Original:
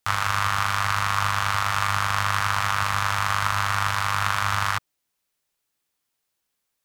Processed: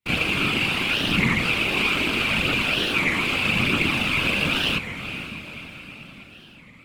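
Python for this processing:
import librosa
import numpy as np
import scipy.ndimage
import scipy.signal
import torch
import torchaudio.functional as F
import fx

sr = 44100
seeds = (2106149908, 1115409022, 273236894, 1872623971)

y = np.abs(x)
y = fx.graphic_eq_15(y, sr, hz=(160, 2500, 6300), db=(10, 11, -5))
y = fx.chorus_voices(y, sr, voices=2, hz=0.4, base_ms=29, depth_ms=2.1, mix_pct=60)
y = scipy.signal.sosfilt(scipy.signal.butter(2, 110.0, 'highpass', fs=sr, output='sos'), y)
y = fx.high_shelf(y, sr, hz=6500.0, db=-4.0)
y = y + 0.65 * np.pad(y, (int(6.3 * sr / 1000.0), 0))[:len(y)]
y = fx.echo_diffused(y, sr, ms=485, feedback_pct=54, wet_db=-11.0)
y = fx.whisperise(y, sr, seeds[0])
y = fx.record_warp(y, sr, rpm=33.33, depth_cents=250.0)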